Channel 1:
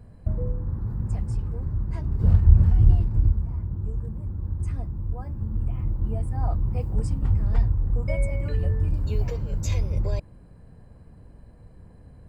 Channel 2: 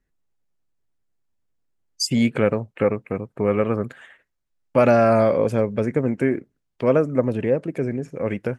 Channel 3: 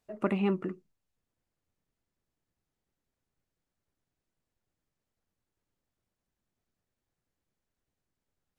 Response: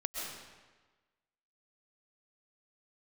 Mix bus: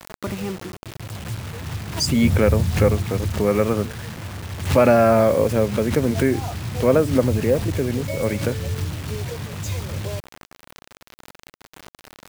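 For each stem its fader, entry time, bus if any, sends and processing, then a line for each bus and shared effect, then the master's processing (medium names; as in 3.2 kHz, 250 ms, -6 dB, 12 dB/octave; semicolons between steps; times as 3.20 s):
+1.0 dB, 0.00 s, send -20.5 dB, bit crusher 7-bit; auto duck -16 dB, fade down 0.80 s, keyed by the third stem
+1.0 dB, 0.00 s, no send, none
-1.5 dB, 0.00 s, send -22 dB, high-pass 54 Hz 12 dB/octave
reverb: on, RT60 1.3 s, pre-delay 90 ms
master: high-pass 92 Hz 24 dB/octave; bit crusher 6-bit; swell ahead of each attack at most 110 dB/s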